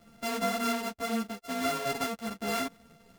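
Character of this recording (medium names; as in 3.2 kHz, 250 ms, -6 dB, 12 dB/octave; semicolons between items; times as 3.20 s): a buzz of ramps at a fixed pitch in blocks of 64 samples; a shimmering, thickened sound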